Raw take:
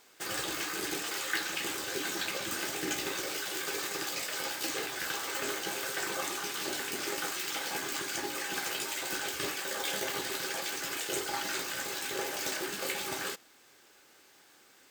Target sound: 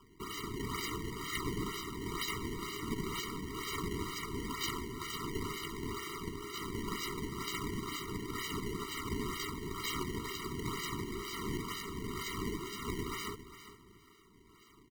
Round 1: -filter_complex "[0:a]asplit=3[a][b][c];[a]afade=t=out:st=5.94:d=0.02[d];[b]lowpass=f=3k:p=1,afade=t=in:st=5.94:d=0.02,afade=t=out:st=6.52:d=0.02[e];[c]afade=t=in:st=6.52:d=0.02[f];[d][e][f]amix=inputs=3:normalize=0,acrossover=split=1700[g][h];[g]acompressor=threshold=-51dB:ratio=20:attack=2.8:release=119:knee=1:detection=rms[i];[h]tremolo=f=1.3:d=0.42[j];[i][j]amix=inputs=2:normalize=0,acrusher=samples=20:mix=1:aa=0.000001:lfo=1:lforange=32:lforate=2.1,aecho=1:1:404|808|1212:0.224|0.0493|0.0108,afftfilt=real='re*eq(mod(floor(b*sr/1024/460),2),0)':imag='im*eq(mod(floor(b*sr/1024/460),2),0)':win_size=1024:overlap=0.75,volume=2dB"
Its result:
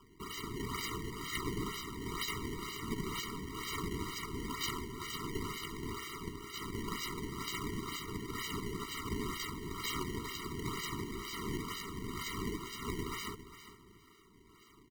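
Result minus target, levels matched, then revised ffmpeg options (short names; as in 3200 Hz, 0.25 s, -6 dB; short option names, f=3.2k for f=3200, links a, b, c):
compressor: peak gain reduction +8.5 dB
-filter_complex "[0:a]asplit=3[a][b][c];[a]afade=t=out:st=5.94:d=0.02[d];[b]lowpass=f=3k:p=1,afade=t=in:st=5.94:d=0.02,afade=t=out:st=6.52:d=0.02[e];[c]afade=t=in:st=6.52:d=0.02[f];[d][e][f]amix=inputs=3:normalize=0,acrossover=split=1700[g][h];[g]acompressor=threshold=-42dB:ratio=20:attack=2.8:release=119:knee=1:detection=rms[i];[h]tremolo=f=1.3:d=0.42[j];[i][j]amix=inputs=2:normalize=0,acrusher=samples=20:mix=1:aa=0.000001:lfo=1:lforange=32:lforate=2.1,aecho=1:1:404|808|1212:0.224|0.0493|0.0108,afftfilt=real='re*eq(mod(floor(b*sr/1024/460),2),0)':imag='im*eq(mod(floor(b*sr/1024/460),2),0)':win_size=1024:overlap=0.75,volume=2dB"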